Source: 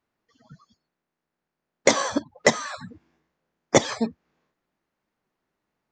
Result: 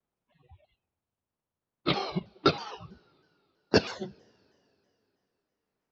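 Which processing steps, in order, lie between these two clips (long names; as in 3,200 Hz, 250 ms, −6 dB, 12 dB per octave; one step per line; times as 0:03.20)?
pitch glide at a constant tempo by −10.5 semitones ending unshifted
coupled-rooms reverb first 0.26 s, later 3.2 s, from −22 dB, DRR 18.5 dB
pitch modulation by a square or saw wave saw down 3.1 Hz, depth 160 cents
level −5.5 dB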